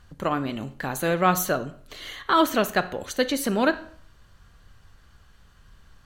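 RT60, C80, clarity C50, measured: 0.55 s, 19.0 dB, 15.0 dB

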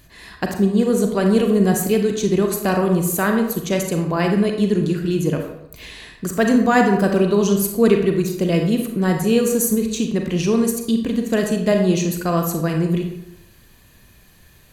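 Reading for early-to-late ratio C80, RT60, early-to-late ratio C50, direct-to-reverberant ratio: 8.0 dB, 0.80 s, 5.5 dB, 3.0 dB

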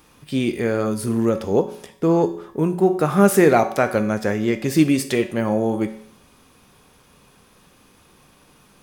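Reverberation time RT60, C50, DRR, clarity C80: 0.60 s, 12.5 dB, 7.0 dB, 15.0 dB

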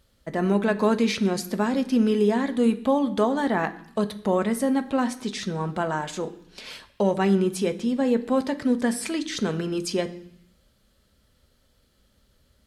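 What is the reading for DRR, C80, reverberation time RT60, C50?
8.0 dB, 18.0 dB, 0.65 s, 15.5 dB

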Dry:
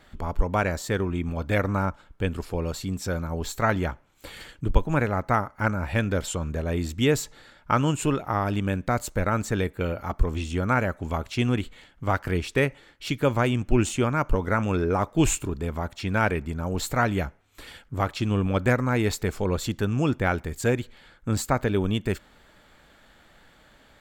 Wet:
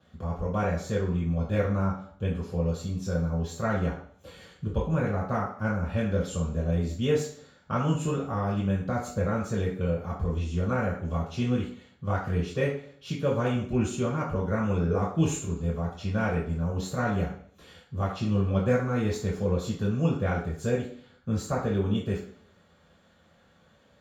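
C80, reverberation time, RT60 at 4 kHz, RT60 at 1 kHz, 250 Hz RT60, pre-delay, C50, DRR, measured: 10.0 dB, 0.55 s, 0.65 s, 0.55 s, 0.60 s, 3 ms, 6.0 dB, -5.5 dB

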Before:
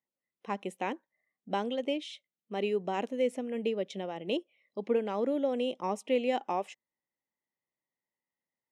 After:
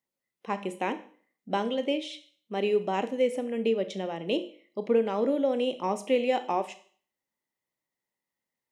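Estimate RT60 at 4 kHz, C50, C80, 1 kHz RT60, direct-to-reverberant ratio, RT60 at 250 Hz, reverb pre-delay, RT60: 0.50 s, 14.5 dB, 18.0 dB, 0.50 s, 10.0 dB, 0.45 s, 20 ms, 0.50 s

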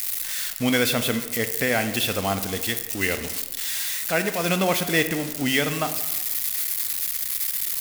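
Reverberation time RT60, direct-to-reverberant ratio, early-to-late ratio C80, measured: 1.2 s, 9.0 dB, 12.5 dB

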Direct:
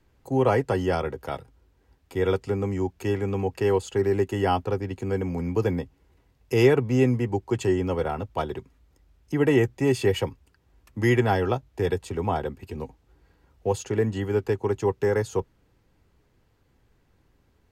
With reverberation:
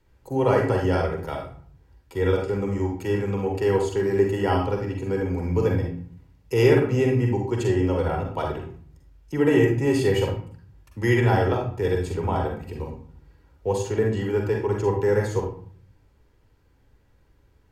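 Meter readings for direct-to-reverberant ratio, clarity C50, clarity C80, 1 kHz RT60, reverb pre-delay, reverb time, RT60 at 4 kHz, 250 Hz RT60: 0.5 dB, 3.5 dB, 8.5 dB, 0.50 s, 39 ms, 0.50 s, 0.35 s, 0.75 s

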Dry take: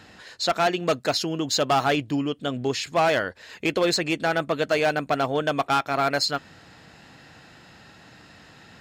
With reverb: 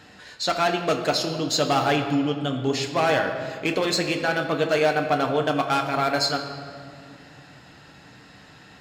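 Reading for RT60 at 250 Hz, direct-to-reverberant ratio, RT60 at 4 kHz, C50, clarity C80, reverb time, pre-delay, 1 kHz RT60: 3.8 s, 3.0 dB, 1.4 s, 7.5 dB, 8.5 dB, 2.3 s, 7 ms, 2.0 s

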